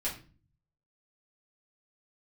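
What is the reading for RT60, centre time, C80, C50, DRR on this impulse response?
0.35 s, 23 ms, 14.0 dB, 9.0 dB, -7.5 dB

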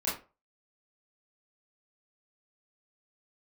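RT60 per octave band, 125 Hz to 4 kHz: 0.35 s, 0.30 s, 0.35 s, 0.30 s, 0.25 s, 0.20 s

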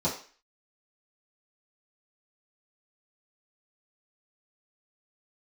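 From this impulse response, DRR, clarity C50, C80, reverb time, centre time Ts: -10.0 dB, 8.0 dB, 12.5 dB, 0.40 s, 26 ms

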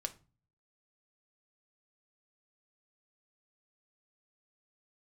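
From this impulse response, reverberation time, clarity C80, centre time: 0.35 s, 23.5 dB, 5 ms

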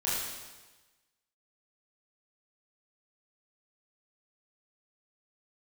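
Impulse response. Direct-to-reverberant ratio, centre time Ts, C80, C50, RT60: -9.0 dB, 92 ms, 1.5 dB, -1.5 dB, 1.2 s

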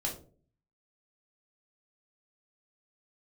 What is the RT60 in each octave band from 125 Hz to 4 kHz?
0.75 s, 0.60 s, 0.55 s, 0.35 s, 0.25 s, 0.25 s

